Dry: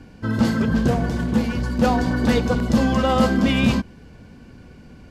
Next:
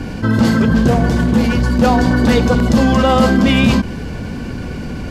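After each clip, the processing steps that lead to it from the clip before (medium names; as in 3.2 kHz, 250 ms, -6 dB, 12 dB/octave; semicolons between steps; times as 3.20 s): level flattener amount 50%; trim +4 dB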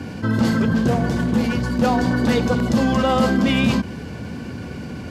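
high-pass 75 Hz 24 dB/octave; trim -5.5 dB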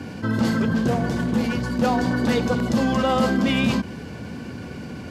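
bass shelf 90 Hz -5.5 dB; trim -2 dB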